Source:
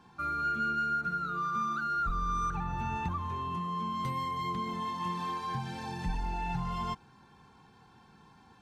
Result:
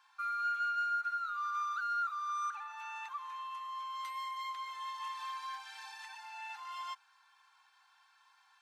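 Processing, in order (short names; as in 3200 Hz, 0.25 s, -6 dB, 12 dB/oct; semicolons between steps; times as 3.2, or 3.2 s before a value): HPF 1100 Hz 24 dB/oct; gain -2 dB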